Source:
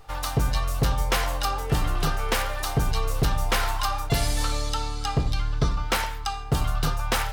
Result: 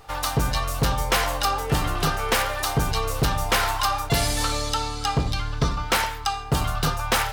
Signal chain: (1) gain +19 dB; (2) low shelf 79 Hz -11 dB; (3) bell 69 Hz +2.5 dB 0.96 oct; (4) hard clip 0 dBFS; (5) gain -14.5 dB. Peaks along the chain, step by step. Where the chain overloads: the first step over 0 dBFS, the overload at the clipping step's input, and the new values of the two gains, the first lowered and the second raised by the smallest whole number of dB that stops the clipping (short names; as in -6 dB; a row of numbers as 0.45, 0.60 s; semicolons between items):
+4.5, +6.5, +6.5, 0.0, -14.5 dBFS; step 1, 6.5 dB; step 1 +12 dB, step 5 -7.5 dB